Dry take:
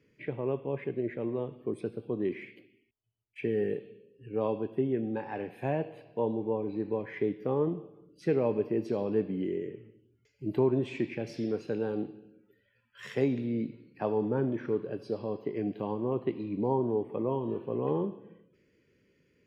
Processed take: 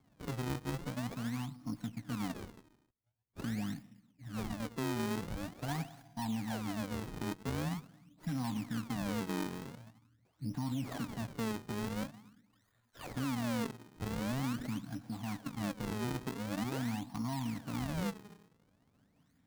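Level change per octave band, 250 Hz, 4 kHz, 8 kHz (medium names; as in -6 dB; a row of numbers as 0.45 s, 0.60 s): -4.5 dB, +8.0 dB, no reading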